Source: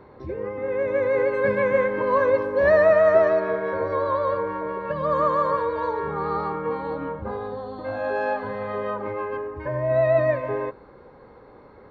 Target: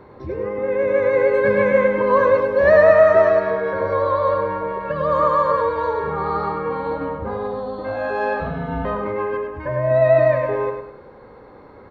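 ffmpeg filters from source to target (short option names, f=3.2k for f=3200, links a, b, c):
-filter_complex "[0:a]asettb=1/sr,asplit=3[a][b][c];[a]atrim=end=8.404[d];[b]atrim=start=8.4:end=8.85,asetpts=PTS-STARTPTS,afade=t=in:d=0.004:c=qsin,afade=t=out:st=0.446:d=0.004:c=qsin,afreqshift=-350[e];[c]atrim=start=8.846[f];[d][e]acrossfade=d=0.004:c1=hsin:c2=qsin[g];[g][f]acrossfade=d=0.004:c1=qsin:c2=hsin,aecho=1:1:102|204|306|408:0.473|0.17|0.0613|0.0221,volume=3.5dB"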